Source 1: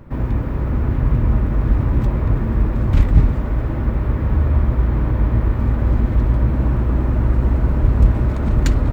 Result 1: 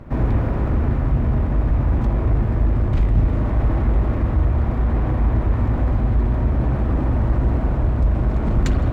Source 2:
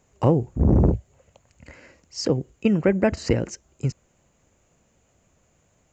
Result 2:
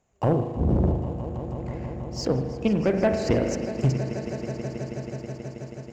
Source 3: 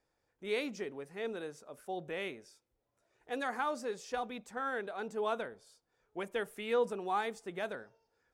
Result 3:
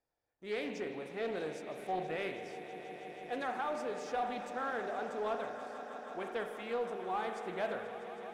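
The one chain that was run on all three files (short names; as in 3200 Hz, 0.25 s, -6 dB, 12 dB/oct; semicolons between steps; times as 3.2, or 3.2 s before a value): high shelf 9600 Hz -6 dB; spring tank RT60 1.3 s, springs 38 ms, chirp 50 ms, DRR 6 dB; vocal rider within 5 dB 0.5 s; bell 700 Hz +6 dB 0.37 oct; swelling echo 0.161 s, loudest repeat 5, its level -16.5 dB; sample leveller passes 1; Doppler distortion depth 0.13 ms; gain -6 dB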